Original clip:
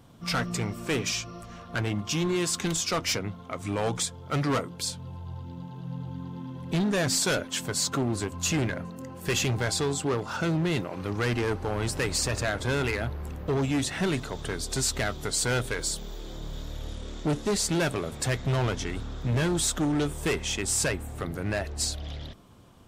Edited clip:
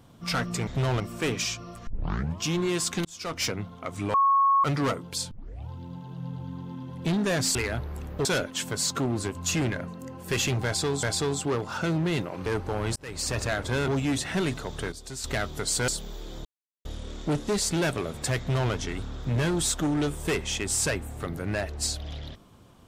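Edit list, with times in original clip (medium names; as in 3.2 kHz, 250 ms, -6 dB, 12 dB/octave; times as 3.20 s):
1.54 s: tape start 0.55 s
2.72–3.15 s: fade in
3.81–4.31 s: bleep 1.1 kHz -17.5 dBFS
4.98 s: tape start 0.38 s
9.62–10.00 s: loop, 2 plays
11.05–11.42 s: delete
11.92–12.32 s: fade in
12.84–13.54 s: move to 7.22 s
14.58–14.90 s: gain -10 dB
15.54–15.86 s: delete
16.43–16.83 s: mute
18.37–18.70 s: copy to 0.67 s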